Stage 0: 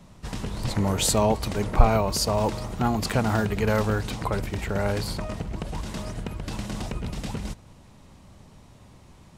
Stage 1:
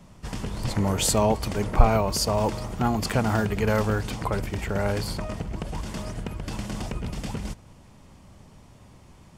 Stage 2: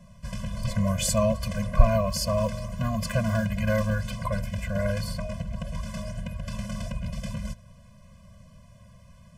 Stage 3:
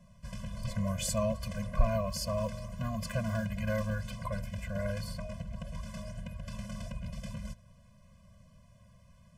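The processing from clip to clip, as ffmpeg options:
ffmpeg -i in.wav -af "bandreject=frequency=3900:width=12" out.wav
ffmpeg -i in.wav -af "afftfilt=real='re*eq(mod(floor(b*sr/1024/240),2),0)':imag='im*eq(mod(floor(b*sr/1024/240),2),0)':win_size=1024:overlap=0.75" out.wav
ffmpeg -i in.wav -af "asoftclip=type=tanh:threshold=-4dB,volume=-7.5dB" out.wav

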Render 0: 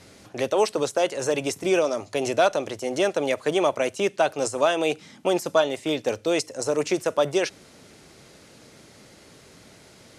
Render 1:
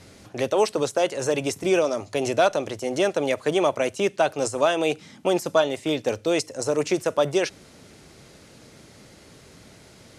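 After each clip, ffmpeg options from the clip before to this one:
ffmpeg -i in.wav -af "lowshelf=frequency=150:gain=6" out.wav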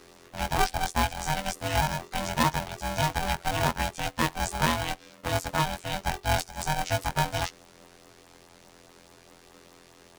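ffmpeg -i in.wav -af "afftfilt=real='hypot(re,im)*cos(PI*b)':imag='0':win_size=2048:overlap=0.75,afreqshift=-63,aeval=exprs='val(0)*sgn(sin(2*PI*390*n/s))':channel_layout=same,volume=-1.5dB" out.wav

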